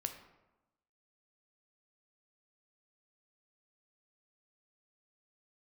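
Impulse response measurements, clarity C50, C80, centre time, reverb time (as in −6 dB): 9.0 dB, 11.0 dB, 16 ms, 1.0 s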